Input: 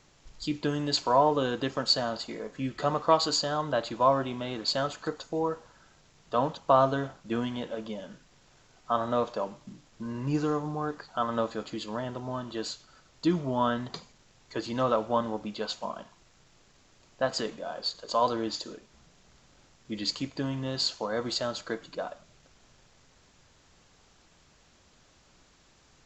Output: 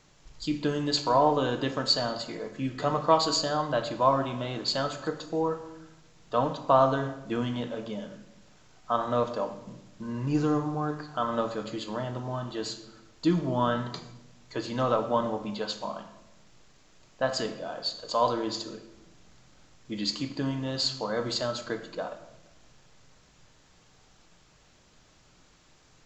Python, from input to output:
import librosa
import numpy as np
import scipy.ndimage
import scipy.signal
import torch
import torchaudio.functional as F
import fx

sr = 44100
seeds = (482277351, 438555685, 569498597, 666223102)

y = fx.room_shoebox(x, sr, seeds[0], volume_m3=400.0, walls='mixed', distance_m=0.52)